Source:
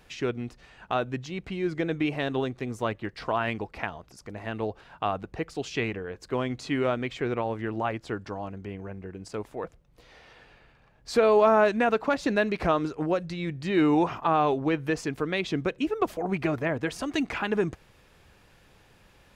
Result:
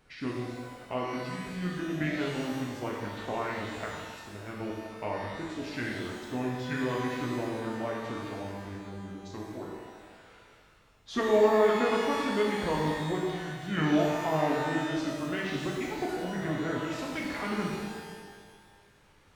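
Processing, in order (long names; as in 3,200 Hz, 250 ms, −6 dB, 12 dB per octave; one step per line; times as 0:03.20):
formants moved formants −4 semitones
reverb with rising layers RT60 1.6 s, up +12 semitones, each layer −8 dB, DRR −2.5 dB
level −8 dB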